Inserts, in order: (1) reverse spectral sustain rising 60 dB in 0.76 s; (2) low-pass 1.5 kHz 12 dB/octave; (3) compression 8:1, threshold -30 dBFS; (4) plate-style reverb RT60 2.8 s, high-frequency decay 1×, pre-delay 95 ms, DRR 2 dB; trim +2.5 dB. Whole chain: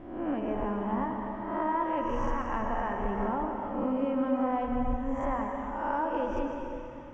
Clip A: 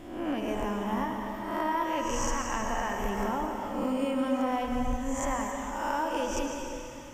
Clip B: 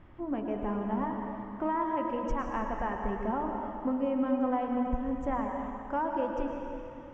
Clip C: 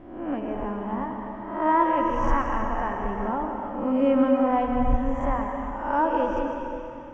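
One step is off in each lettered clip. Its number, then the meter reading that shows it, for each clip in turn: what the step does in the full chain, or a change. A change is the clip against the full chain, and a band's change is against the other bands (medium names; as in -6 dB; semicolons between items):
2, 2 kHz band +4.5 dB; 1, 250 Hz band +2.0 dB; 3, mean gain reduction 3.5 dB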